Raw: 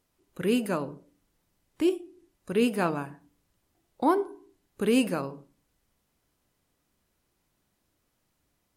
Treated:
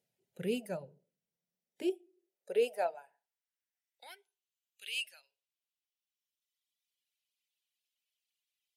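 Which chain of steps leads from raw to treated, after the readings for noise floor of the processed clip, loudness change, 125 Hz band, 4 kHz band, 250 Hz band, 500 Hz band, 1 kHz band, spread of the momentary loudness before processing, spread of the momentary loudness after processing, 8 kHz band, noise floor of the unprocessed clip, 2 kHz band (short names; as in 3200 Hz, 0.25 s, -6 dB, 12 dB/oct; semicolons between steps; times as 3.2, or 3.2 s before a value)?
under -85 dBFS, -8.5 dB, under -10 dB, -4.0 dB, -16.0 dB, -7.5 dB, -12.5 dB, 13 LU, 21 LU, -10.0 dB, -76 dBFS, -8.0 dB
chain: reverb removal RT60 2 s; tone controls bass -6 dB, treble -4 dB; high-pass sweep 110 Hz -> 2900 Hz, 1.02–4.33; fixed phaser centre 300 Hz, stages 6; gain -5.5 dB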